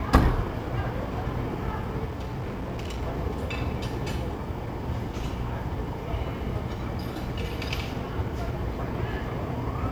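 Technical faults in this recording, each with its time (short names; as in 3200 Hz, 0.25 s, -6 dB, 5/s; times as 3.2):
2.04–3.03 clipped -29 dBFS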